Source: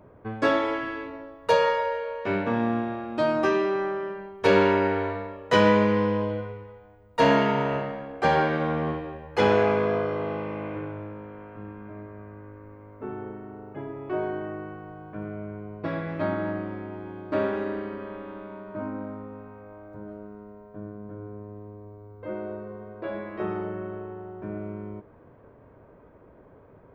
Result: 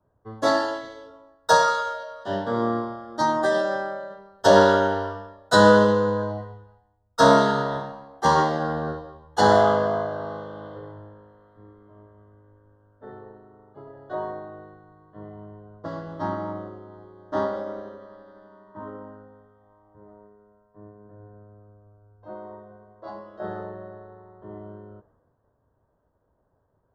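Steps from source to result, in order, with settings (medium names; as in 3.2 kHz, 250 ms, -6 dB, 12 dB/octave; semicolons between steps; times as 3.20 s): formant shift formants +5 st; Butterworth band-stop 2.4 kHz, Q 1.3; three bands expanded up and down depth 70%; trim -1 dB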